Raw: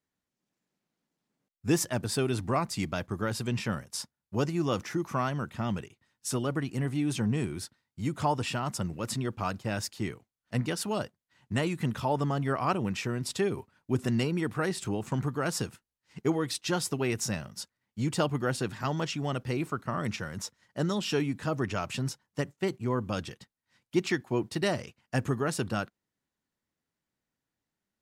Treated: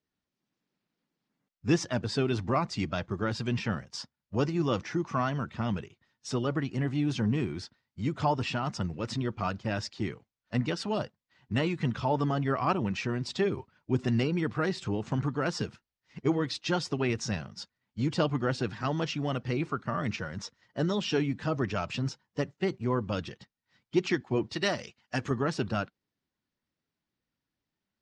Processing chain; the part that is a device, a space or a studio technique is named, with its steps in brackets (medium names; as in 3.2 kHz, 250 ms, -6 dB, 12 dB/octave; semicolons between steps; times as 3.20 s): clip after many re-uploads (low-pass 5.8 kHz 24 dB/octave; coarse spectral quantiser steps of 15 dB); 24.53–25.31 s: tilt EQ +2 dB/octave; trim +1 dB